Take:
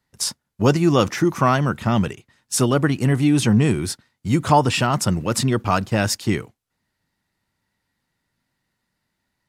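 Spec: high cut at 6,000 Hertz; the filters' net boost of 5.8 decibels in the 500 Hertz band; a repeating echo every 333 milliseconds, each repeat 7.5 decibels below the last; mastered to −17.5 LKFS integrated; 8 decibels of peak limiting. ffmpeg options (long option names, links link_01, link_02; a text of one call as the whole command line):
ffmpeg -i in.wav -af "lowpass=6000,equalizer=frequency=500:width_type=o:gain=7.5,alimiter=limit=-6.5dB:level=0:latency=1,aecho=1:1:333|666|999|1332|1665:0.422|0.177|0.0744|0.0312|0.0131,volume=1dB" out.wav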